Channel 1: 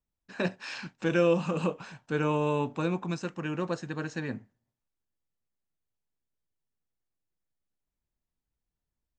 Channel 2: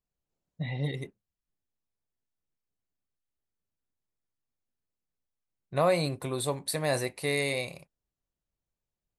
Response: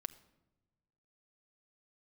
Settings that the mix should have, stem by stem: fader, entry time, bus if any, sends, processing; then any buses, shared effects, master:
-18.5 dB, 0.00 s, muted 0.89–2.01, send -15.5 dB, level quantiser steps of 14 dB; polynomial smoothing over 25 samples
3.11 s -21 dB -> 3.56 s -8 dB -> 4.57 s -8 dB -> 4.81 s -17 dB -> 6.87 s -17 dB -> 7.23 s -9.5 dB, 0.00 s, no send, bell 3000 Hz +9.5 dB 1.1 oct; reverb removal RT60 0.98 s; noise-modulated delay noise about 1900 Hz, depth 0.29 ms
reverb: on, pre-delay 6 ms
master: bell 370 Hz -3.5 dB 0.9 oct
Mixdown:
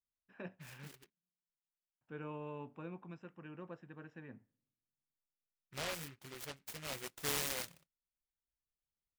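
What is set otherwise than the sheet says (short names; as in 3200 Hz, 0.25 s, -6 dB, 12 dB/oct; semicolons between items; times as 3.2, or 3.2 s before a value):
stem 1: missing level quantiser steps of 14 dB; master: missing bell 370 Hz -3.5 dB 0.9 oct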